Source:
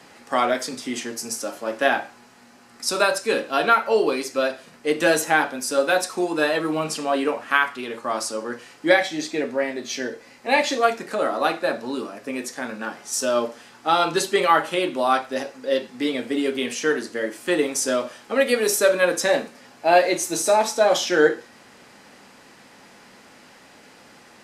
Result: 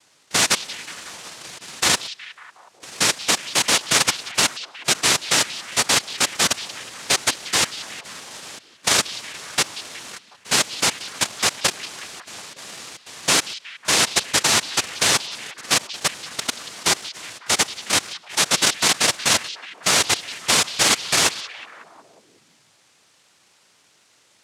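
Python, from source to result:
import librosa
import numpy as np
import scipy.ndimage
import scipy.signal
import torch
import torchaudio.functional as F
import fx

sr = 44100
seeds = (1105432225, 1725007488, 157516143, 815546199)

y = fx.level_steps(x, sr, step_db=21)
y = fx.noise_vocoder(y, sr, seeds[0], bands=1)
y = fx.echo_stepped(y, sr, ms=183, hz=3700.0, octaves=-0.7, feedback_pct=70, wet_db=-11.5)
y = y * 10.0 ** (4.5 / 20.0)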